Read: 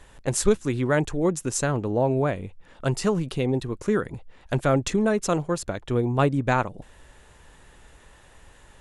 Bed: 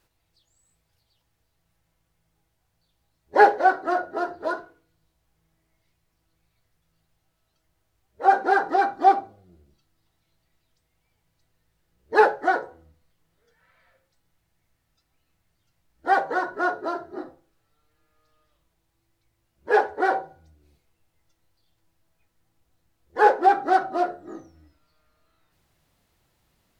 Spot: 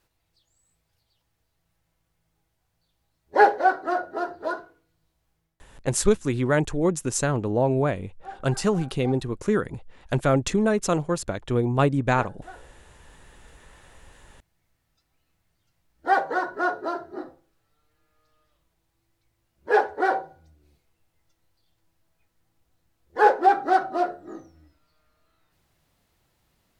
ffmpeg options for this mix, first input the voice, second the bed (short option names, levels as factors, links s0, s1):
-filter_complex "[0:a]adelay=5600,volume=1.06[s0];[1:a]volume=10.6,afade=t=out:st=5.3:d=0.35:silence=0.0891251,afade=t=in:st=12.57:d=0.74:silence=0.0794328[s1];[s0][s1]amix=inputs=2:normalize=0"